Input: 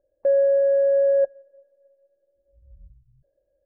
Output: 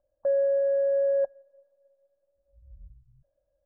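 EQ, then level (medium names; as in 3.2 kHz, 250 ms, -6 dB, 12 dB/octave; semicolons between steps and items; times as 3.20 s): resonant low-pass 1.3 kHz, resonance Q 1.6; static phaser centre 990 Hz, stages 4; 0.0 dB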